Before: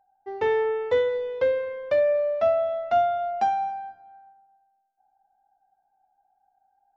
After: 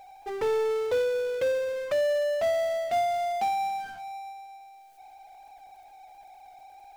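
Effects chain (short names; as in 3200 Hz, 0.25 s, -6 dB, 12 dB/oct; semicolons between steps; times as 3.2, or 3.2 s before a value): envelope phaser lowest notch 200 Hz, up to 1700 Hz, full sweep at -26.5 dBFS; power-law curve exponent 0.5; gain -5.5 dB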